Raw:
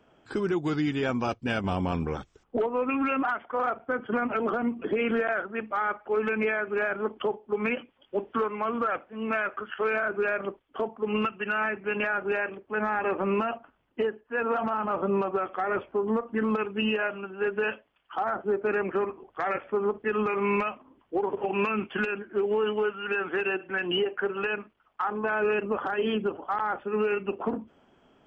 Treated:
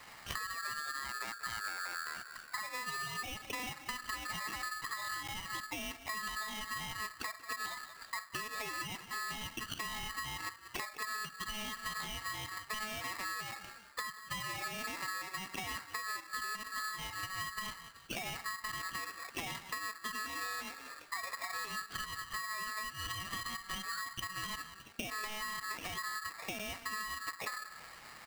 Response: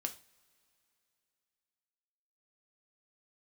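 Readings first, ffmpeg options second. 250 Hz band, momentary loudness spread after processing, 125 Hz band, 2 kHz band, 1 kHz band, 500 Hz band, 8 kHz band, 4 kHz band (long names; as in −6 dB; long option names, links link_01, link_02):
−21.5 dB, 4 LU, −13.5 dB, −8.0 dB, −10.0 dB, −26.5 dB, can't be measured, −0.5 dB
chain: -filter_complex "[0:a]acrossover=split=210[link_01][link_02];[link_02]acompressor=threshold=-42dB:ratio=3[link_03];[link_01][link_03]amix=inputs=2:normalize=0,bandreject=frequency=60:width_type=h:width=6,bandreject=frequency=120:width_type=h:width=6,bandreject=frequency=180:width_type=h:width=6,bandreject=frequency=240:width_type=h:width=6,bandreject=frequency=300:width_type=h:width=6,bandreject=frequency=360:width_type=h:width=6,asplit=4[link_04][link_05][link_06][link_07];[link_05]adelay=184,afreqshift=-33,volume=-20dB[link_08];[link_06]adelay=368,afreqshift=-66,volume=-29.6dB[link_09];[link_07]adelay=552,afreqshift=-99,volume=-39.3dB[link_10];[link_04][link_08][link_09][link_10]amix=inputs=4:normalize=0,acompressor=threshold=-46dB:ratio=12,aeval=exprs='val(0)*sgn(sin(2*PI*1500*n/s))':channel_layout=same,volume=8.5dB"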